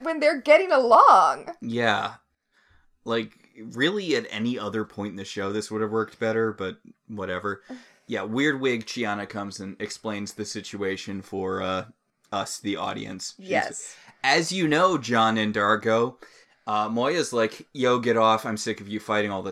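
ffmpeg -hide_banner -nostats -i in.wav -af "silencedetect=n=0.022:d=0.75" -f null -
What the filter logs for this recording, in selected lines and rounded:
silence_start: 2.11
silence_end: 3.06 | silence_duration: 0.95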